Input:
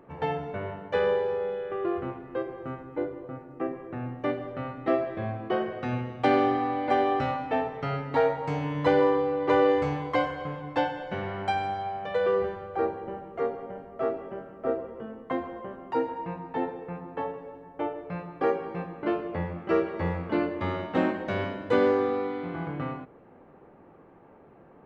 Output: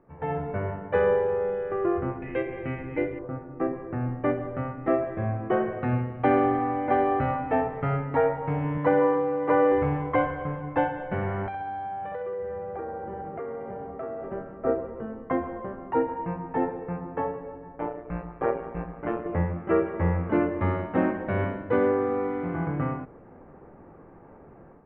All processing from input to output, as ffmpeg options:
-filter_complex "[0:a]asettb=1/sr,asplit=3[a][b][c];[a]atrim=end=2.224[d];[b]atrim=start=2.22:end=3.19,asetpts=PTS-STARTPTS,afade=t=in:d=0.004:c=qsin,afade=t=out:st=0.966:d=0.004:c=qsin,highshelf=f=1.7k:t=q:w=3:g=10,acompressor=mode=upward:threshold=-33dB:ratio=2.5:attack=3.2:release=140:knee=2.83:detection=peak[e];[c]atrim=start=3.186[f];[d][e]acrossfade=d=0.004:c1=hsin:c2=qsin[g];[g][f]acrossfade=d=0.004:c1=qsin:c2=hsin,asettb=1/sr,asplit=3[h][i][j];[h]atrim=end=8.774[k];[i]atrim=start=8.77:end=9.72,asetpts=PTS-STARTPTS,afade=t=in:d=0.004:c=qsin,afade=t=out:st=0.946:d=0.004:c=qsin,bandreject=f=380:w=5.9,acrossover=split=2700[l][m];[m]acompressor=threshold=-49dB:ratio=4:attack=1:release=60[n];[l][n]amix=inputs=2:normalize=0,highpass=160[o];[j]atrim=start=9.716[p];[k][o]acrossfade=d=0.004:c1=hsin:c2=qsin[q];[q][p]acrossfade=d=0.004:c1=qsin:c2=hsin,asettb=1/sr,asplit=3[r][s][t];[r]atrim=end=11.464[u];[s]atrim=start=11.46:end=14.24,asetpts=PTS-STARTPTS,afade=t=in:d=0.004:c=qsin,afade=t=out:st=2.776:d=0.004:c=qsin,highpass=50,aecho=1:1:65|130|195|260|325|390|455|520:0.596|0.334|0.187|0.105|0.0586|0.0328|0.0184|0.0103,atrim=end_sample=122598,acompressor=threshold=-35dB:ratio=6:attack=3.2:release=140:knee=1:detection=peak[v];[t]atrim=start=14.236[w];[u][v]acrossfade=d=0.004:c1=hsin:c2=qsin[x];[x][w]acrossfade=d=0.004:c1=qsin:c2=hsin,asettb=1/sr,asplit=3[y][z][aa];[y]atrim=end=17.764[ab];[z]atrim=start=17.76:end=19.26,asetpts=PTS-STARTPTS,afade=t=in:d=0.004:c=qsin,afade=t=out:st=1.496:d=0.004:c=qsin,bandreject=f=330:w=7.7,tremolo=f=120:d=0.75[ac];[aa]atrim=start=19.256[ad];[ab][ac]acrossfade=d=0.004:c1=hsin:c2=qsin[ae];[ae][ad]acrossfade=d=0.004:c1=qsin:c2=hsin,lowpass=f=2.2k:w=0.5412,lowpass=f=2.2k:w=1.3066,lowshelf=f=97:g=11,dynaudnorm=f=190:g=3:m=11.5dB,volume=-8.5dB"

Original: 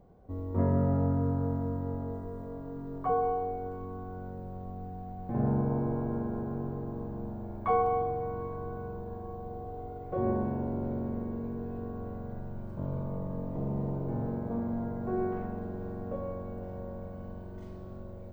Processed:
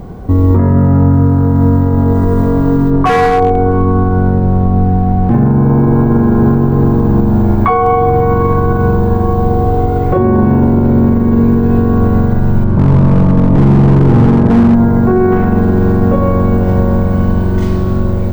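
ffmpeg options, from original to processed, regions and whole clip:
-filter_complex "[0:a]asettb=1/sr,asplit=3[a][b][c];[a]atrim=end=2.904[d];[b]atrim=start=2.9:end=5.34,asetpts=PTS-STARTPTS,afade=t=in:d=0.004:c=qsin,afade=t=out:st=2.436:d=0.004:c=qsin,lowpass=f=1.9k:p=1,asoftclip=type=hard:threshold=-27dB[e];[c]atrim=start=5.336[f];[d][e]acrossfade=d=0.004:c1=hsin:c2=qsin[g];[g][f]acrossfade=d=0.004:c1=qsin:c2=hsin,asettb=1/sr,asplit=3[h][i][j];[h]atrim=end=12.644[k];[i]atrim=start=12.64:end=14.75,asetpts=PTS-STARTPTS,afade=t=in:d=0.004:c=qsin,afade=t=out:st=2.106:d=0.004:c=qsin,lowpass=f=1.7k:p=1,volume=31.5dB,asoftclip=hard,volume=-31.5dB[l];[j]atrim=start=14.746[m];[k][l]acrossfade=d=0.004:c1=hsin:c2=qsin[n];[n][m]acrossfade=d=0.004:c1=qsin:c2=hsin,acompressor=threshold=-31dB:ratio=6,equalizer=f=590:t=o:w=0.88:g=-9,alimiter=level_in=33dB:limit=-1dB:release=50:level=0:latency=1,volume=-1dB"

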